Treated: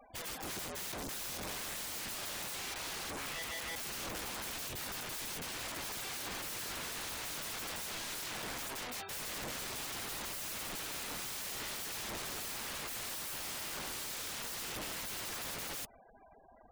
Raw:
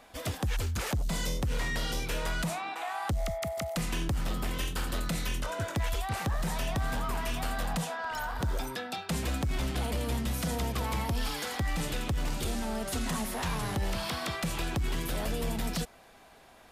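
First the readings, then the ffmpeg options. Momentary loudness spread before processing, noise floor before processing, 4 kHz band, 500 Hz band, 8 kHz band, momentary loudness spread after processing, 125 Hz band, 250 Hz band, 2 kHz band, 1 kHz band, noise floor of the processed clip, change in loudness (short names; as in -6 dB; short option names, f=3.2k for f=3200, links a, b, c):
2 LU, -55 dBFS, -2.5 dB, -11.0 dB, 0.0 dB, 1 LU, -20.5 dB, -14.5 dB, -5.5 dB, -9.5 dB, -59 dBFS, -6.0 dB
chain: -af "aeval=exprs='(mod(59.6*val(0)+1,2)-1)/59.6':c=same,afftfilt=real='re*gte(hypot(re,im),0.00398)':imag='im*gte(hypot(re,im),0.00398)':win_size=1024:overlap=0.75,volume=-1dB"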